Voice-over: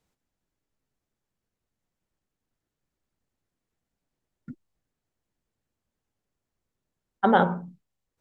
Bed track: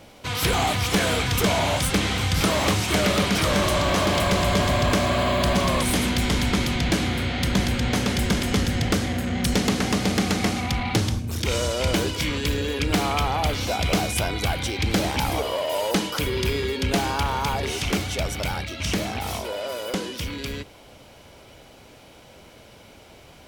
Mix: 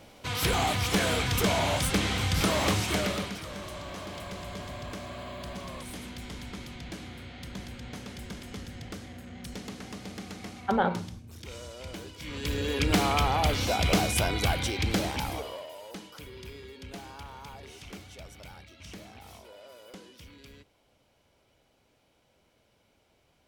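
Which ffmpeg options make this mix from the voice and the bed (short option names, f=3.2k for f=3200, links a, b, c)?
-filter_complex "[0:a]adelay=3450,volume=-6dB[a];[1:a]volume=12dB,afade=t=out:st=2.79:d=0.61:silence=0.199526,afade=t=in:st=12.2:d=0.61:silence=0.149624,afade=t=out:st=14.5:d=1.25:silence=0.125893[b];[a][b]amix=inputs=2:normalize=0"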